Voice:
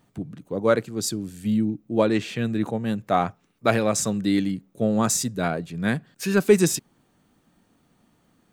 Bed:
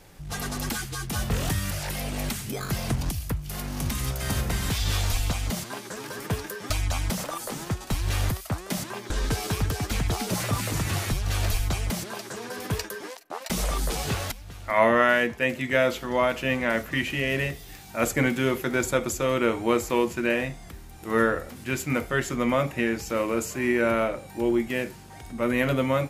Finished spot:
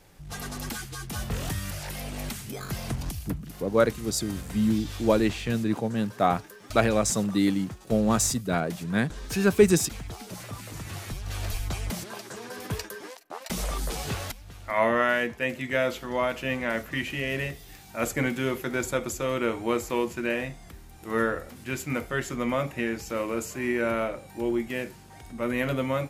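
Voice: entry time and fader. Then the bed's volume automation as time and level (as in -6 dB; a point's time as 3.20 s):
3.10 s, -1.5 dB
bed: 3.23 s -4.5 dB
3.58 s -12 dB
10.63 s -12 dB
11.86 s -3.5 dB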